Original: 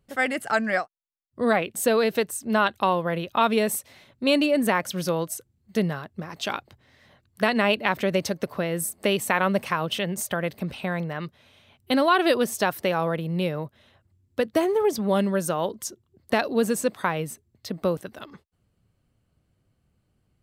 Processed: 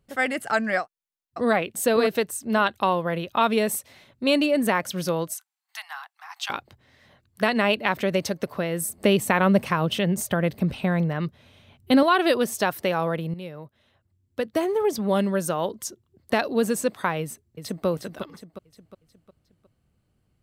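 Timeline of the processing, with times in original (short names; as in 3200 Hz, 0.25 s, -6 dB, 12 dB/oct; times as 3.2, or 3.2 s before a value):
0.8–1.5 echo throw 0.56 s, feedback 10%, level -2.5 dB
5.33–6.5 steep high-pass 750 Hz 96 dB/oct
8.89–12.03 low shelf 370 Hz +8.5 dB
13.34–15.05 fade in, from -12.5 dB
17.21–17.86 echo throw 0.36 s, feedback 45%, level -6.5 dB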